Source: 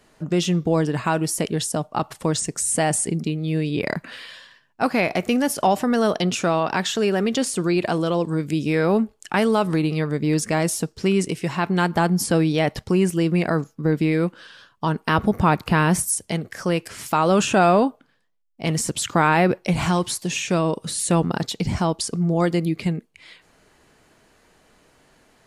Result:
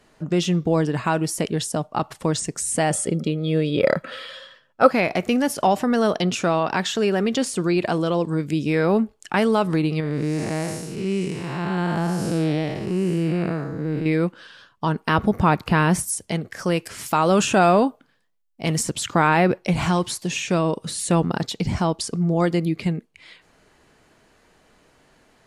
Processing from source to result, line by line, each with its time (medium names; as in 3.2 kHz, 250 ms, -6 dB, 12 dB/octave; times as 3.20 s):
2.91–4.91 s: small resonant body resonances 540/1300/3300 Hz, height 16 dB
10.00–14.06 s: spectral blur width 263 ms
16.59–18.83 s: treble shelf 7.3 kHz +7 dB
whole clip: treble shelf 8.5 kHz -5.5 dB